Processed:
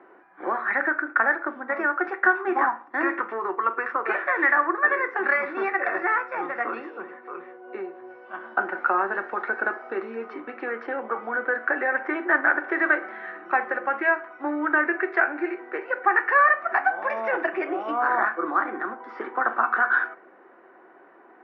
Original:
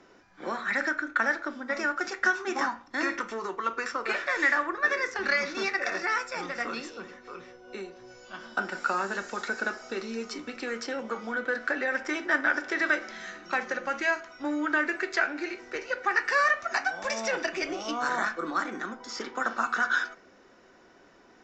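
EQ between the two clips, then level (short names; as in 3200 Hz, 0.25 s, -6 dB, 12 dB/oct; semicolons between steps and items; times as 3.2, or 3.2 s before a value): speaker cabinet 330–2100 Hz, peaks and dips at 350 Hz +8 dB, 770 Hz +7 dB, 1100 Hz +5 dB, 1700 Hz +3 dB; +2.5 dB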